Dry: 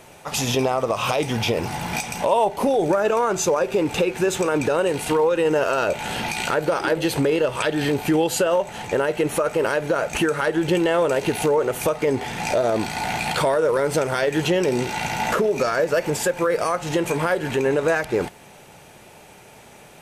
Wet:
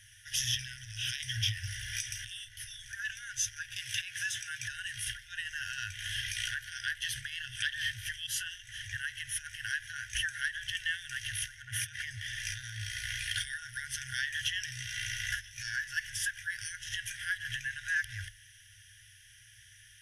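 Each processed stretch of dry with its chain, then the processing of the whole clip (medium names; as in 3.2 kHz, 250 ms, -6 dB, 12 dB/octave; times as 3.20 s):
3.76–4.68 s: high-pass 130 Hz + three bands compressed up and down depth 100%
11.62–12.02 s: high-pass 120 Hz + treble shelf 2.3 kHz -11 dB + decay stretcher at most 24 dB/s
whole clip: FFT band-reject 130–1400 Hz; rippled EQ curve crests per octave 1.2, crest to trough 14 dB; trim -8.5 dB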